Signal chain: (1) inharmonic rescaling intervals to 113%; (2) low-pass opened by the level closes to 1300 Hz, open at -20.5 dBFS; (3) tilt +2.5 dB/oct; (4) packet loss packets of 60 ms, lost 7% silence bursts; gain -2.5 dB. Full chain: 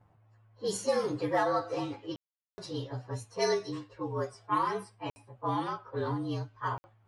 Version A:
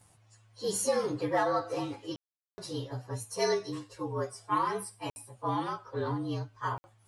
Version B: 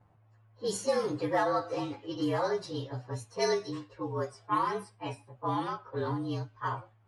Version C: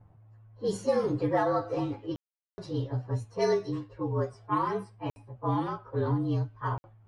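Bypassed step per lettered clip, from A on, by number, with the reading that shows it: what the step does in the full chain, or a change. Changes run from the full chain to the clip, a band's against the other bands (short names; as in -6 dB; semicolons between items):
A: 2, 8 kHz band +5.5 dB; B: 4, momentary loudness spread change -2 LU; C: 3, 8 kHz band -8.5 dB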